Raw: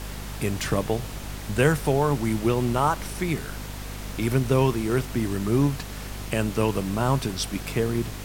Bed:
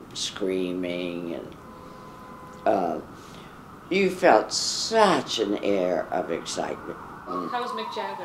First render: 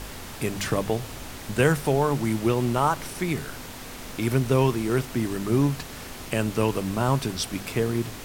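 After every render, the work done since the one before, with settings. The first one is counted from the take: de-hum 50 Hz, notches 4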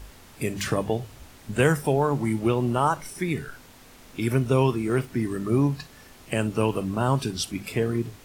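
noise print and reduce 11 dB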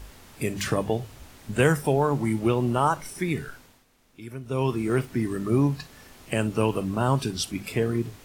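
3.48–4.80 s: dip -14.5 dB, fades 0.37 s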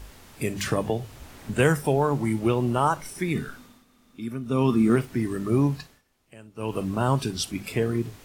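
0.84–1.54 s: three bands compressed up and down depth 40%; 3.35–4.96 s: small resonant body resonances 230/1200/3600 Hz, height 12 dB; 5.76–6.81 s: dip -21.5 dB, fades 0.26 s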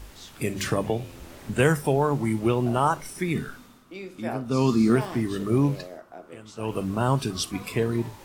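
add bed -16.5 dB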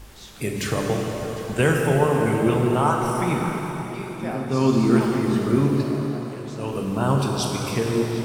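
repeats whose band climbs or falls 189 ms, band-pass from 200 Hz, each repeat 1.4 oct, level -5.5 dB; plate-style reverb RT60 4.2 s, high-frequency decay 0.9×, DRR 0 dB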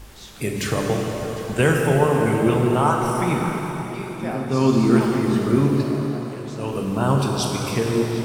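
trim +1.5 dB

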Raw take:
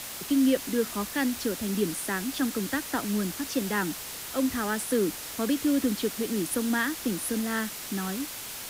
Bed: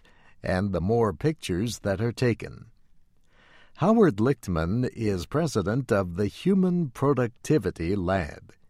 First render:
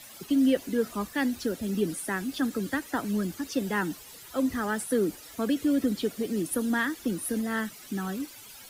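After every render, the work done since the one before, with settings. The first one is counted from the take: noise reduction 14 dB, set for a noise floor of -39 dBFS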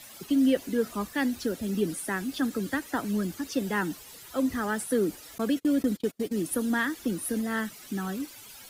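5.38–6.41 s: gate -34 dBFS, range -32 dB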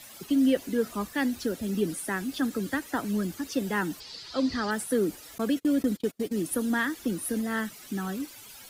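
4.00–4.71 s: resonant low-pass 4.6 kHz, resonance Q 6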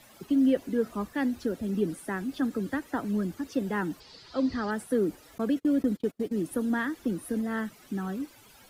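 treble shelf 2.2 kHz -11 dB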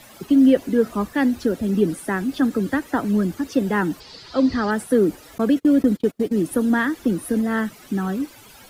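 trim +9 dB

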